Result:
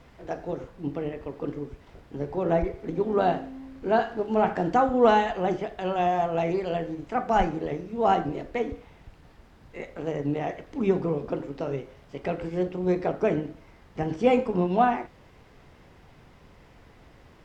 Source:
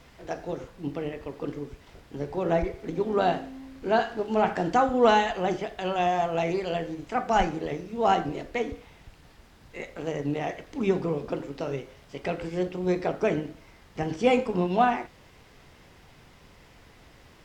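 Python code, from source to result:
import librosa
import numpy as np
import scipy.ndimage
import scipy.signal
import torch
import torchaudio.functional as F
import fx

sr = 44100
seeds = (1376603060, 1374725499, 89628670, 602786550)

y = fx.high_shelf(x, sr, hz=2300.0, db=-9.5)
y = y * 10.0 ** (1.5 / 20.0)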